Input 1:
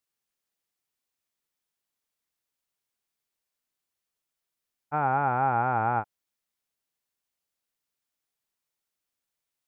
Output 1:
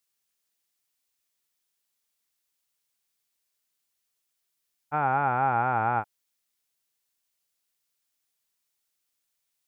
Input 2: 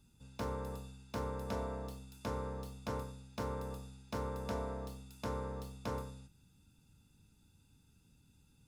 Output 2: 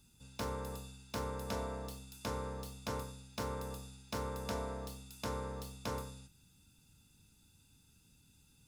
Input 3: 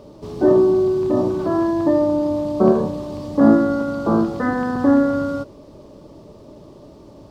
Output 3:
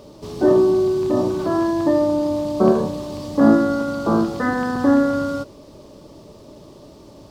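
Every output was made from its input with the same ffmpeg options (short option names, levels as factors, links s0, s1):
-af "highshelf=f=2100:g=8.5,volume=0.891"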